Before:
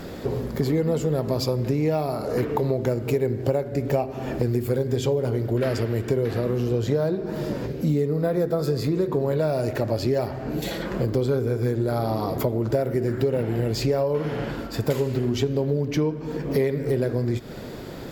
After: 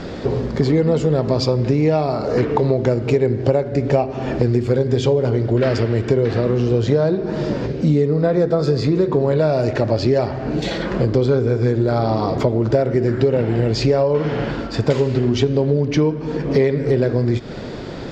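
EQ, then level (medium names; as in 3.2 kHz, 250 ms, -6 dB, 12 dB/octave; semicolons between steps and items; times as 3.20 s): low-pass 6.2 kHz 24 dB/octave; +6.5 dB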